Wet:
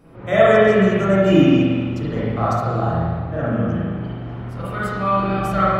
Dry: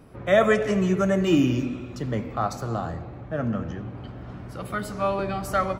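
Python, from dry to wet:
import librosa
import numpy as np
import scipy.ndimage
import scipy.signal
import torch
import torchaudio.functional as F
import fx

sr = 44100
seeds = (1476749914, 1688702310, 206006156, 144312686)

y = fx.rev_spring(x, sr, rt60_s=1.6, pass_ms=(36, 42), chirp_ms=30, drr_db=-9.5)
y = F.gain(torch.from_numpy(y), -3.0).numpy()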